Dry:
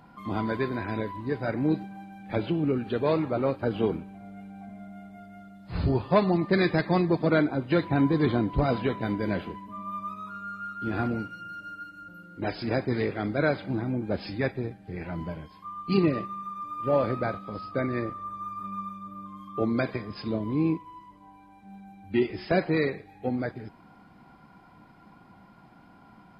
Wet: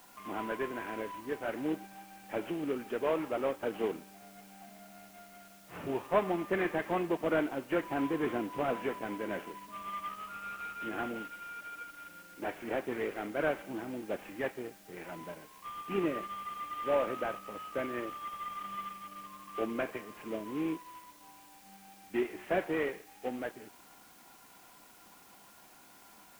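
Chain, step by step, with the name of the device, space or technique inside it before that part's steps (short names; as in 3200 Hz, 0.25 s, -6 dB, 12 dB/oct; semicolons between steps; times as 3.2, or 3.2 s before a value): army field radio (BPF 340–3300 Hz; CVSD 16 kbps; white noise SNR 23 dB); gain -4 dB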